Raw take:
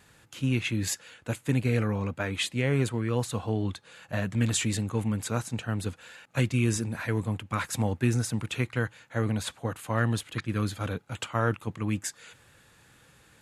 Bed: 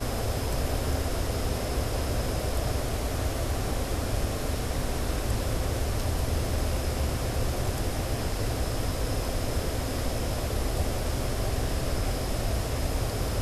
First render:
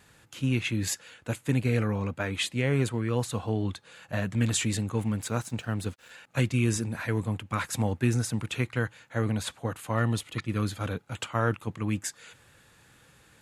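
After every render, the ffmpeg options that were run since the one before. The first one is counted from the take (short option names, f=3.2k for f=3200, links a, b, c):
-filter_complex "[0:a]asettb=1/sr,asplit=3[a][b][c];[a]atrim=end=5.014[d];[b]atrim=start=5.01:end=6.11,asetpts=PTS-STARTPTS,afade=t=in:d=0.004:c=qsin,afade=t=out:st=1.096:d=0.004:c=qsin,aeval=exprs='sgn(val(0))*max(abs(val(0))-0.00211,0)':c=same[e];[c]atrim=start=6.106[f];[d][e]acrossfade=d=0.004:c1=hsin:c2=qsin[g];[g][f]acrossfade=d=0.004:c1=qsin:c2=hsin,asettb=1/sr,asplit=3[h][i][j];[h]atrim=end=9.954[k];[i]atrim=start=9.95:end=10.57,asetpts=PTS-STARTPTS,afade=t=in:d=0.004:c=qsin,afade=t=out:st=0.616:d=0.004:c=qsin,asuperstop=centerf=1600:order=4:qfactor=7.6[l];[j]atrim=start=10.566[m];[k][l]acrossfade=d=0.004:c1=hsin:c2=qsin[n];[n][m]acrossfade=d=0.004:c1=qsin:c2=hsin"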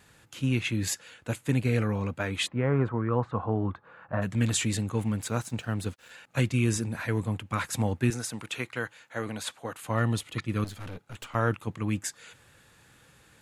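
-filter_complex "[0:a]asplit=3[a][b][c];[a]afade=t=out:st=2.46:d=0.02[d];[b]lowpass=f=1.2k:t=q:w=2.2,afade=t=in:st=2.46:d=0.02,afade=t=out:st=4.21:d=0.02[e];[c]afade=t=in:st=4.21:d=0.02[f];[d][e][f]amix=inputs=3:normalize=0,asettb=1/sr,asplit=3[g][h][i];[g]atrim=end=8.104[j];[h]atrim=start=8.1:end=9.82,asetpts=PTS-STARTPTS,afade=t=in:d=0.004:c=qsin,afade=t=out:st=1.716:d=0.004:c=qsin,highpass=f=430:p=1[k];[i]atrim=start=9.816[l];[j][k]acrossfade=d=0.004:c1=hsin:c2=qsin[m];[m][l]acrossfade=d=0.004:c1=qsin:c2=hsin,asettb=1/sr,asplit=3[n][o][p];[n]atrim=end=10.644[q];[o]atrim=start=10.64:end=11.35,asetpts=PTS-STARTPTS,afade=t=in:d=0.004:c=qsin,afade=t=out:st=0.706:d=0.004:c=qsin,aeval=exprs='(tanh(70.8*val(0)+0.55)-tanh(0.55))/70.8':c=same[r];[p]atrim=start=11.346[s];[q][r]acrossfade=d=0.004:c1=hsin:c2=qsin[t];[t][s]acrossfade=d=0.004:c1=qsin:c2=hsin"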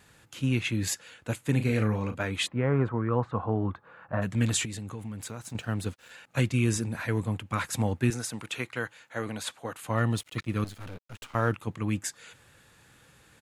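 -filter_complex "[0:a]asplit=3[a][b][c];[a]afade=t=out:st=1.53:d=0.02[d];[b]asplit=2[e][f];[f]adelay=37,volume=-8.5dB[g];[e][g]amix=inputs=2:normalize=0,afade=t=in:st=1.53:d=0.02,afade=t=out:st=2.23:d=0.02[h];[c]afade=t=in:st=2.23:d=0.02[i];[d][h][i]amix=inputs=3:normalize=0,asettb=1/sr,asplit=3[j][k][l];[j]atrim=end=4.654[m];[k]atrim=start=4.65:end=5.55,asetpts=PTS-STARTPTS,afade=t=in:d=0.004:c=qsin,afade=t=out:st=0.896:d=0.004:c=qsin,acompressor=threshold=-35dB:ratio=4:attack=3.2:release=140:knee=1:detection=peak[n];[l]atrim=start=5.546[o];[m][n]acrossfade=d=0.004:c1=hsin:c2=qsin[p];[p][o]acrossfade=d=0.004:c1=qsin:c2=hsin,asettb=1/sr,asplit=3[q][r][s];[q]atrim=end=10.104[t];[r]atrim=start=10.1:end=11.52,asetpts=PTS-STARTPTS,afade=t=in:d=0.004:c=qsin,afade=t=out:st=1.416:d=0.004:c=qsin,aeval=exprs='sgn(val(0))*max(abs(val(0))-0.00251,0)':c=same[u];[s]atrim=start=11.516[v];[t][u]acrossfade=d=0.004:c1=hsin:c2=qsin[w];[w][v]acrossfade=d=0.004:c1=qsin:c2=hsin"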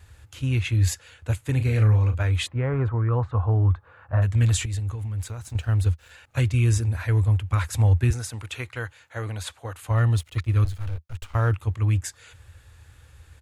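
-af "lowshelf=f=120:t=q:w=3:g=14"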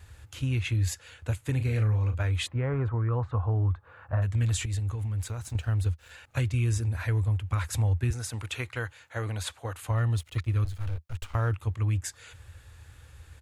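-af "acompressor=threshold=-28dB:ratio=2"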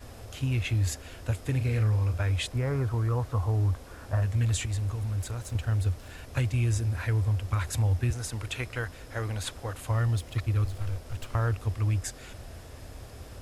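-filter_complex "[1:a]volume=-17dB[a];[0:a][a]amix=inputs=2:normalize=0"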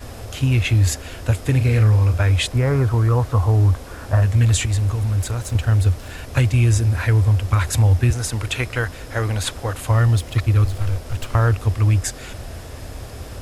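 -af "volume=10.5dB"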